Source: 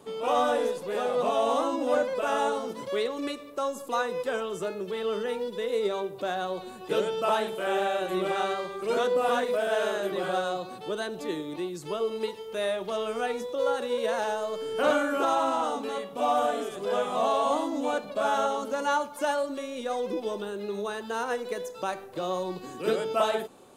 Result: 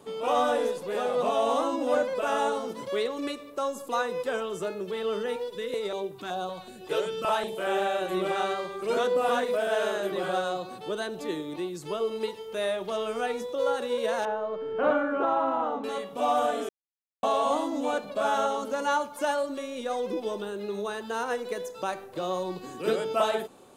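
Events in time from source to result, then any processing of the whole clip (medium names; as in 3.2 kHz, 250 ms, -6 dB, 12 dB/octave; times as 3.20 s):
5.36–7.57 s: step-sequenced notch 5.3 Hz 220–1900 Hz
14.25–15.84 s: low-pass 1.7 kHz
16.69–17.23 s: mute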